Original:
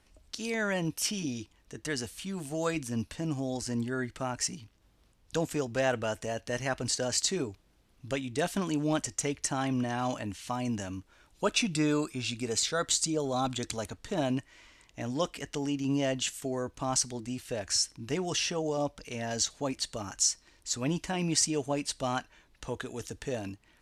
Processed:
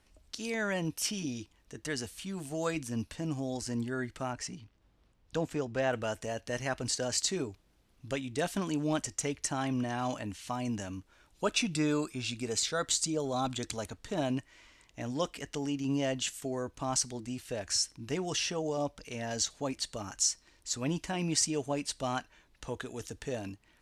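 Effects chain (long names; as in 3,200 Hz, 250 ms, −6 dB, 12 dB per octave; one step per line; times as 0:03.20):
0:04.33–0:05.93: low-pass filter 3,100 Hz 6 dB per octave
level −2 dB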